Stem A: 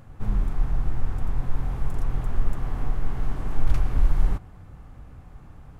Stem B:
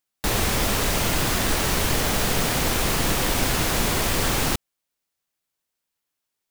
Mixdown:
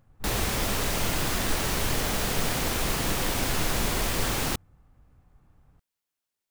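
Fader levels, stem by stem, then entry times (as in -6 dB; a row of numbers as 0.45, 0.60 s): -14.5, -5.0 dB; 0.00, 0.00 s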